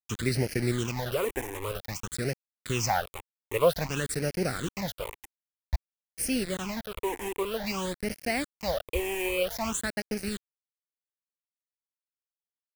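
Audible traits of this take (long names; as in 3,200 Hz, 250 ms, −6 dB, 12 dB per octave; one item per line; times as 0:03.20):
tremolo saw up 7 Hz, depth 30%
a quantiser's noise floor 6 bits, dither none
phaser sweep stages 8, 0.52 Hz, lowest notch 170–1,100 Hz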